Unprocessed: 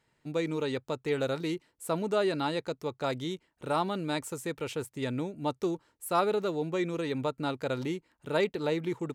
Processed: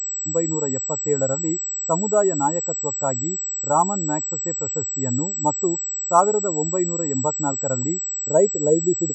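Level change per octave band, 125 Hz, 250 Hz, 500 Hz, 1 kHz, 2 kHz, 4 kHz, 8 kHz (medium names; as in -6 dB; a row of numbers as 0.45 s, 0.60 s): +8.5 dB, +7.5 dB, +9.0 dB, +11.0 dB, -2.5 dB, under -15 dB, +28.5 dB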